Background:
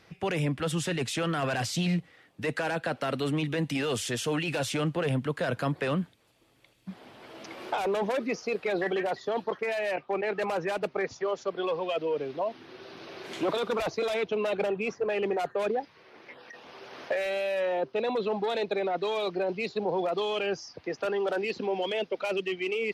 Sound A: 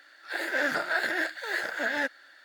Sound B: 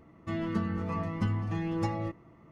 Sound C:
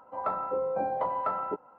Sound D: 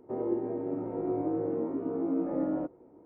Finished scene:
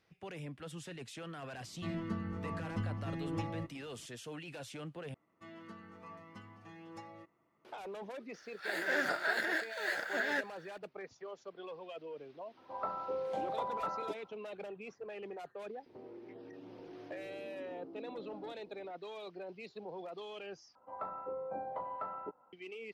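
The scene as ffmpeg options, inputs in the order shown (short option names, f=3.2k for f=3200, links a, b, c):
-filter_complex "[2:a]asplit=2[a][b];[3:a]asplit=2[c][d];[0:a]volume=-16.5dB[e];[b]highpass=f=600:p=1[f];[4:a]acompressor=threshold=-43dB:ratio=6:attack=3.2:release=140:knee=1:detection=peak[g];[e]asplit=3[h][i][j];[h]atrim=end=5.144[k];[f]atrim=end=2.51,asetpts=PTS-STARTPTS,volume=-13dB[l];[i]atrim=start=7.646:end=20.754[m];[d]atrim=end=1.78,asetpts=PTS-STARTPTS,volume=-11dB[n];[j]atrim=start=22.526[o];[a]atrim=end=2.51,asetpts=PTS-STARTPTS,volume=-7.5dB,afade=t=in:d=0.004:c=hsin,afade=t=out:st=2.506:d=0.004:c=hsin,adelay=1550[p];[1:a]atrim=end=2.44,asetpts=PTS-STARTPTS,volume=-5.5dB,afade=t=in:d=0.004:c=hsin,afade=t=out:st=2.436:d=0.004:c=hsin,adelay=367794S[q];[c]atrim=end=1.78,asetpts=PTS-STARTPTS,volume=-7.5dB,afade=t=in:d=0.004:c=hsin,afade=t=out:st=1.776:d=0.004:c=hsin,adelay=12570[r];[g]atrim=end=3.05,asetpts=PTS-STARTPTS,volume=-5.5dB,afade=t=in:d=0.004:c=hsin,afade=t=out:st=3.046:d=0.004:c=hsin,adelay=15860[s];[k][l]acrossfade=d=0.004:c1=hsin:c2=hsin[t];[t][m]acrossfade=d=0.004:c1=hsin:c2=hsin[u];[u][n]acrossfade=d=0.004:c1=hsin:c2=hsin[v];[v][o]acrossfade=d=0.004:c1=hsin:c2=hsin[w];[w][p][q][r][s]amix=inputs=5:normalize=0"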